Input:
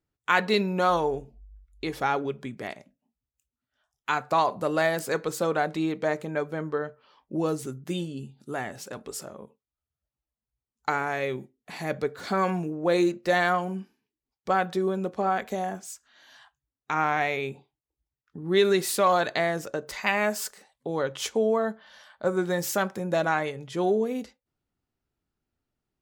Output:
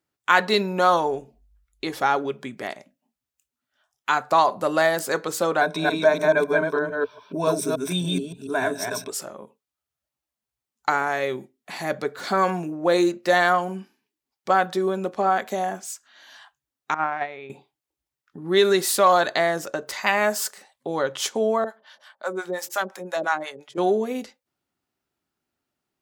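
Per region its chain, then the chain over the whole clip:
5.61–9.10 s: chunks repeated in reverse 143 ms, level -1 dB + rippled EQ curve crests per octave 1.6, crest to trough 15 dB
16.94–17.50 s: gate -25 dBFS, range -11 dB + distance through air 250 m
21.64–23.78 s: high-pass 260 Hz + harmonic tremolo 5.7 Hz, depth 100%, crossover 620 Hz
whole clip: high-pass 350 Hz 6 dB/octave; band-stop 460 Hz, Q 12; dynamic bell 2.4 kHz, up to -5 dB, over -45 dBFS, Q 2.7; trim +6 dB

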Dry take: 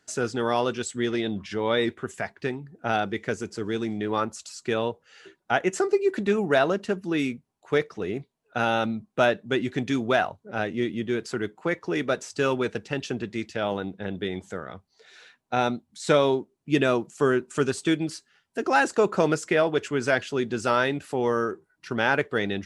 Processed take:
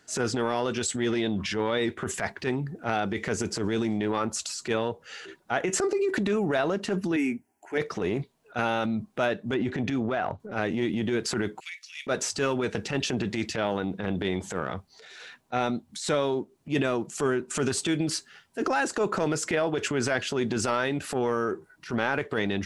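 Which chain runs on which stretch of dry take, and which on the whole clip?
7.16–7.78 s: high-pass 120 Hz + static phaser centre 770 Hz, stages 8
9.54–10.40 s: low-pass 1.9 kHz 6 dB/octave + compression, threshold -26 dBFS
11.60–12.07 s: elliptic high-pass 2.3 kHz, stop band 70 dB + compression 2.5:1, threshold -39 dBFS
whole clip: transient shaper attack -11 dB, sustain +5 dB; compression 5:1, threshold -30 dBFS; trim +6.5 dB

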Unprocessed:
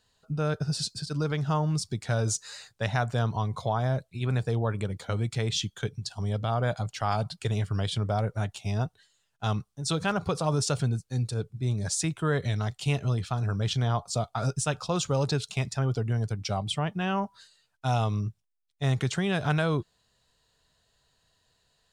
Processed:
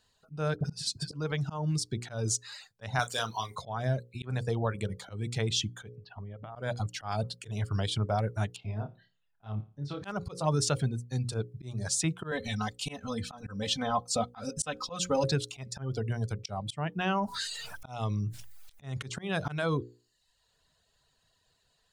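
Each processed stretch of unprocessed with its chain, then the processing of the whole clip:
0.56–1.14 s: peaking EQ 560 Hz +3 dB 1.8 oct + phase dispersion highs, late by 44 ms, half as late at 1.1 kHz
2.99–3.56 s: tilt EQ +4.5 dB/octave + doubling 36 ms -8 dB
5.95–6.56 s: low-pass 2.6 kHz 24 dB/octave + compression 8:1, threshold -37 dBFS
8.56–10.04 s: compression 2:1, threshold -37 dBFS + distance through air 340 m + flutter echo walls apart 4.8 m, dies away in 0.38 s
12.31–15.24 s: band-stop 340 Hz, Q 5.3 + comb 3.9 ms, depth 89%
16.98–18.96 s: slow attack 593 ms + level flattener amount 70%
whole clip: reverb removal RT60 0.73 s; hum notches 60/120/180/240/300/360/420/480/540 Hz; slow attack 182 ms

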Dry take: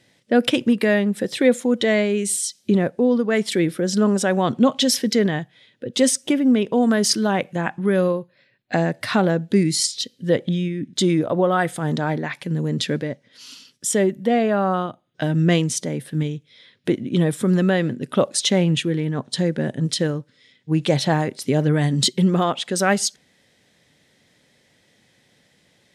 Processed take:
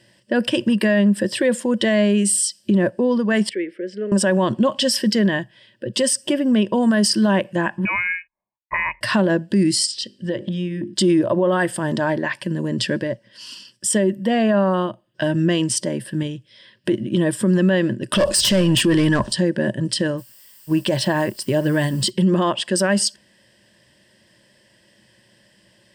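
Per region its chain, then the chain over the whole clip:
3.49–4.12 s: two resonant band-passes 970 Hz, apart 2.3 oct + peaking EQ 1.3 kHz +7 dB 0.41 oct
7.85–9.01 s: high-pass 350 Hz + gate -50 dBFS, range -31 dB + frequency inversion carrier 2.7 kHz
9.86–10.94 s: low-pass 8.3 kHz + hum notches 50/100/150/200/250/300/350/400 Hz + compression 4:1, threshold -24 dBFS
18.12–19.33 s: overdrive pedal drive 22 dB, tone 6.5 kHz, clips at -5 dBFS + tone controls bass +10 dB, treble +8 dB
20.17–22.09 s: companding laws mixed up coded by A + added noise blue -51 dBFS
whole clip: rippled EQ curve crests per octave 1.3, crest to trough 11 dB; loudness maximiser +10.5 dB; trim -8.5 dB

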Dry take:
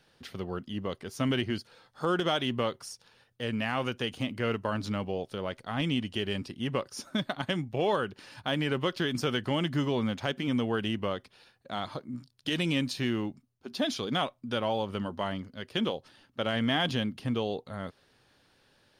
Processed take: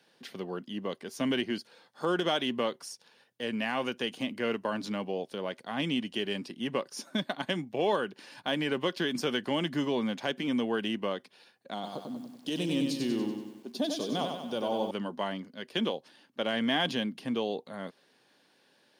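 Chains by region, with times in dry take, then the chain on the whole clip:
11.74–14.91 s: peaking EQ 1.9 kHz -12.5 dB 1.3 oct + bit-crushed delay 95 ms, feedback 55%, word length 10-bit, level -5 dB
whole clip: high-pass 180 Hz 24 dB/octave; band-stop 1.3 kHz, Q 9

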